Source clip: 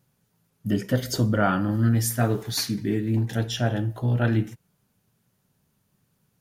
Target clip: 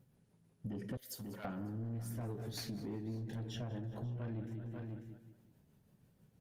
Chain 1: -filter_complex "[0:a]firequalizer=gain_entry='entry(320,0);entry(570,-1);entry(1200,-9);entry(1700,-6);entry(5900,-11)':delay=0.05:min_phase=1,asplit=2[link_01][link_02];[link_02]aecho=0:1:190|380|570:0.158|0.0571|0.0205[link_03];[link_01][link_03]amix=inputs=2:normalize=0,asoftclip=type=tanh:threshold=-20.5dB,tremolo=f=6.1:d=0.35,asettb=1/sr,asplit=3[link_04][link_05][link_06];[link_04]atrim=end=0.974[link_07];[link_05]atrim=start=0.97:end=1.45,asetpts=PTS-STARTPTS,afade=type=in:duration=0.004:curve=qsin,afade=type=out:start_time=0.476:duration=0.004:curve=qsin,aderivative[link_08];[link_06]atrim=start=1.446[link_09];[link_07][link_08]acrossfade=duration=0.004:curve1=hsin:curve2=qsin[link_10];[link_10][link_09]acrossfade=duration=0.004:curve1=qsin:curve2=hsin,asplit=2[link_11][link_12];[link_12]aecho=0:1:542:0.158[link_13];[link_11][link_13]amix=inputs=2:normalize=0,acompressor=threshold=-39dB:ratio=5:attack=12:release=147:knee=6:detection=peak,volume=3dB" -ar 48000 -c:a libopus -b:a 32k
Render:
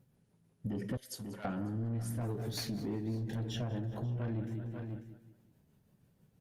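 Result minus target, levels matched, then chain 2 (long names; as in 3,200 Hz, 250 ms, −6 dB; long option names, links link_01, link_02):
downward compressor: peak gain reduction −5 dB
-filter_complex "[0:a]firequalizer=gain_entry='entry(320,0);entry(570,-1);entry(1200,-9);entry(1700,-6);entry(5900,-11)':delay=0.05:min_phase=1,asplit=2[link_01][link_02];[link_02]aecho=0:1:190|380|570:0.158|0.0571|0.0205[link_03];[link_01][link_03]amix=inputs=2:normalize=0,asoftclip=type=tanh:threshold=-20.5dB,tremolo=f=6.1:d=0.35,asettb=1/sr,asplit=3[link_04][link_05][link_06];[link_04]atrim=end=0.974[link_07];[link_05]atrim=start=0.97:end=1.45,asetpts=PTS-STARTPTS,afade=type=in:duration=0.004:curve=qsin,afade=type=out:start_time=0.476:duration=0.004:curve=qsin,aderivative[link_08];[link_06]atrim=start=1.446[link_09];[link_07][link_08]acrossfade=duration=0.004:curve1=hsin:curve2=qsin[link_10];[link_10][link_09]acrossfade=duration=0.004:curve1=qsin:curve2=hsin,asplit=2[link_11][link_12];[link_12]aecho=0:1:542:0.158[link_13];[link_11][link_13]amix=inputs=2:normalize=0,acompressor=threshold=-45.5dB:ratio=5:attack=12:release=147:knee=6:detection=peak,volume=3dB" -ar 48000 -c:a libopus -b:a 32k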